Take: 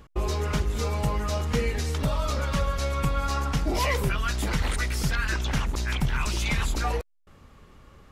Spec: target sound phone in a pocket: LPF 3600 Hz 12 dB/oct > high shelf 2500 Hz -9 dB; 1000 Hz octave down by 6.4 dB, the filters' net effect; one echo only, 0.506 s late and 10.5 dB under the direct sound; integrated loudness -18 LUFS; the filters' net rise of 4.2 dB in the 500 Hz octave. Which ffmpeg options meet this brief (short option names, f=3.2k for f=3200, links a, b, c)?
-af "lowpass=3.6k,equalizer=f=500:t=o:g=7.5,equalizer=f=1k:t=o:g=-8.5,highshelf=f=2.5k:g=-9,aecho=1:1:506:0.299,volume=10dB"